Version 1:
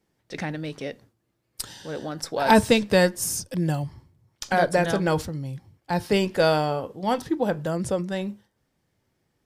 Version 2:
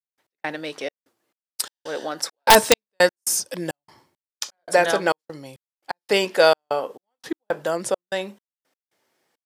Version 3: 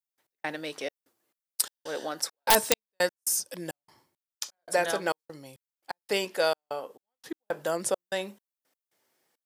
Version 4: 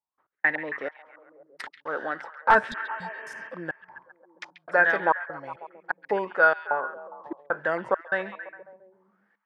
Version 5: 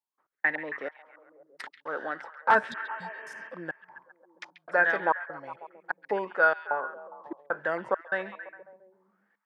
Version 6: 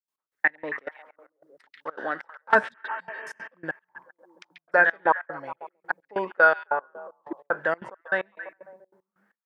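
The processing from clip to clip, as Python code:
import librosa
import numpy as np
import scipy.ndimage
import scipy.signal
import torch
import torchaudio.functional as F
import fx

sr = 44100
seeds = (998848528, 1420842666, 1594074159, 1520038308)

y1 = scipy.signal.sosfilt(scipy.signal.butter(2, 460.0, 'highpass', fs=sr, output='sos'), x)
y1 = fx.step_gate(y1, sr, bpm=170, pattern='..x..xxxxx..xxx.', floor_db=-60.0, edge_ms=4.5)
y1 = (np.mod(10.0 ** (7.5 / 20.0) * y1 + 1.0, 2.0) - 1.0) / 10.0 ** (7.5 / 20.0)
y1 = y1 * librosa.db_to_amplitude(6.5)
y2 = fx.high_shelf(y1, sr, hz=8600.0, db=10.0)
y2 = fx.rider(y2, sr, range_db=3, speed_s=0.5)
y2 = y2 * librosa.db_to_amplitude(-8.0)
y3 = fx.filter_lfo_lowpass(y2, sr, shape='saw_up', hz=1.8, low_hz=850.0, high_hz=2100.0, q=7.2)
y3 = fx.spec_repair(y3, sr, seeds[0], start_s=2.7, length_s=0.77, low_hz=240.0, high_hz=3200.0, source='before')
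y3 = fx.echo_stepped(y3, sr, ms=136, hz=2900.0, octaves=-0.7, feedback_pct=70, wet_db=-9)
y4 = scipy.signal.sosfilt(scipy.signal.butter(2, 130.0, 'highpass', fs=sr, output='sos'), y3)
y4 = y4 * librosa.db_to_amplitude(-3.0)
y5 = fx.step_gate(y4, sr, bpm=190, pattern='.x..xx..xx.xxx', floor_db=-24.0, edge_ms=4.5)
y5 = y5 * librosa.db_to_amplitude(4.5)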